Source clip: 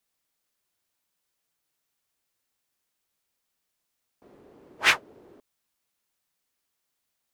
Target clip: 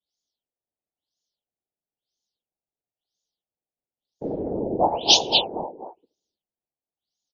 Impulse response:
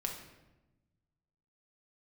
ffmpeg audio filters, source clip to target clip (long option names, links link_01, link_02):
-filter_complex "[0:a]asplit=2[link_01][link_02];[1:a]atrim=start_sample=2205[link_03];[link_02][link_03]afir=irnorm=-1:irlink=0,volume=-17dB[link_04];[link_01][link_04]amix=inputs=2:normalize=0,adynamicequalizer=threshold=0.00891:dfrequency=790:dqfactor=1.8:tfrequency=790:tqfactor=1.8:attack=5:release=100:ratio=0.375:range=3:mode=boostabove:tftype=bell,aecho=1:1:240|480|720|960:0.422|0.164|0.0641|0.025,afftdn=noise_reduction=34:noise_floor=-54,asuperstop=centerf=1600:order=12:qfactor=0.72,acompressor=threshold=-46dB:ratio=3,equalizer=frequency=120:width=3.9:gain=-5.5,afftfilt=real='hypot(re,im)*cos(2*PI*random(0))':imag='hypot(re,im)*sin(2*PI*random(1))':win_size=512:overlap=0.75,crystalizer=i=3.5:c=0,alimiter=level_in=32dB:limit=-1dB:release=50:level=0:latency=1,afftfilt=real='re*lt(b*sr/1024,990*pow(7100/990,0.5+0.5*sin(2*PI*1*pts/sr)))':imag='im*lt(b*sr/1024,990*pow(7100/990,0.5+0.5*sin(2*PI*1*pts/sr)))':win_size=1024:overlap=0.75"